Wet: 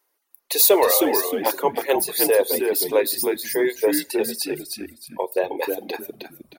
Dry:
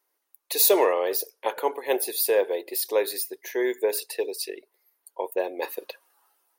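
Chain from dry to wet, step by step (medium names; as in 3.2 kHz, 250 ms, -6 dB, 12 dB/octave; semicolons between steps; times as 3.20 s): frequency-shifting echo 312 ms, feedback 31%, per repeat -73 Hz, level -4.5 dB; in parallel at -8 dB: saturation -16 dBFS, distortion -15 dB; on the sum: Schroeder reverb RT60 0.43 s, combs from 27 ms, DRR 13 dB; reverb removal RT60 0.67 s; trim +2 dB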